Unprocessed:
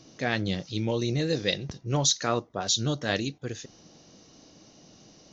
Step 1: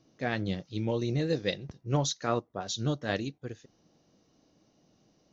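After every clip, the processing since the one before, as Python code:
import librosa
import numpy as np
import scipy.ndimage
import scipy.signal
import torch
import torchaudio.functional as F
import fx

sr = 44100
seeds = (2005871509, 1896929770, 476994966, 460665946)

y = fx.high_shelf(x, sr, hz=2900.0, db=-9.0)
y = fx.upward_expand(y, sr, threshold_db=-45.0, expansion=1.5)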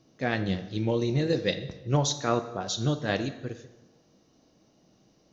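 y = fx.rev_plate(x, sr, seeds[0], rt60_s=1.1, hf_ratio=0.8, predelay_ms=0, drr_db=9.5)
y = y * 10.0 ** (3.0 / 20.0)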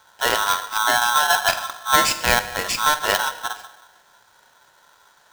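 y = x * np.sign(np.sin(2.0 * np.pi * 1200.0 * np.arange(len(x)) / sr))
y = y * 10.0 ** (7.5 / 20.0)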